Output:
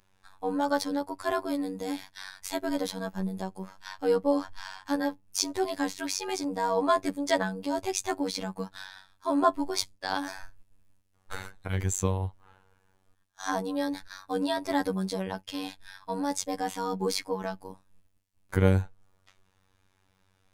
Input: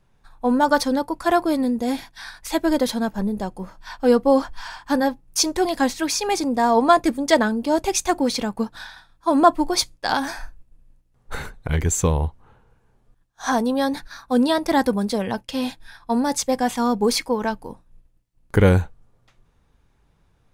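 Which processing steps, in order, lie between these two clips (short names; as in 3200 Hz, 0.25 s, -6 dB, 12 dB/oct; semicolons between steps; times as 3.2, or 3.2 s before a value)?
robotiser 94.9 Hz; mismatched tape noise reduction encoder only; gain -6.5 dB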